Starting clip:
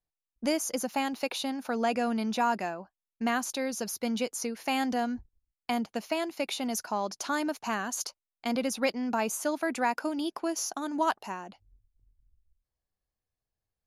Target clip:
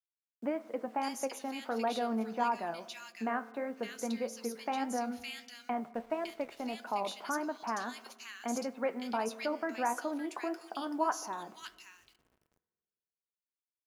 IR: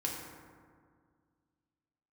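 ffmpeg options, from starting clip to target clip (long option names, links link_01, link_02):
-filter_complex "[0:a]flanger=delay=7.5:depth=6.1:regen=60:speed=1.6:shape=sinusoidal,acrossover=split=2200[link_01][link_02];[link_02]adelay=560[link_03];[link_01][link_03]amix=inputs=2:normalize=0,asplit=2[link_04][link_05];[link_05]acompressor=threshold=-44dB:ratio=6,volume=0dB[link_06];[link_04][link_06]amix=inputs=2:normalize=0,highshelf=frequency=2200:gain=-7,acrusher=bits=10:mix=0:aa=0.000001,highpass=frequency=400:poles=1,highshelf=frequency=6000:gain=-4,asplit=2[link_07][link_08];[1:a]atrim=start_sample=2205,asetrate=61740,aresample=44100[link_09];[link_08][link_09]afir=irnorm=-1:irlink=0,volume=-14dB[link_10];[link_07][link_10]amix=inputs=2:normalize=0,asettb=1/sr,asplit=3[link_11][link_12][link_13];[link_11]atrim=end=5.944[link_14];[link_12]atrim=start=5.94:end=6.75,asetpts=PTS-STARTPTS,afade=type=in:duration=0.004:curve=qsin,afade=type=out:start_time=0.806:duration=0.004:curve=qsin,aeval=exprs='sgn(val(0))*max(abs(val(0))-0.00141,0)':channel_layout=same[link_15];[link_13]atrim=start=6.746[link_16];[link_14][link_15]acrossfade=duration=0.004:curve1=hsin:curve2=qsin[link_17];[link_17][link_16]acrossfade=duration=0.004:curve1=qsin:curve2=hsin"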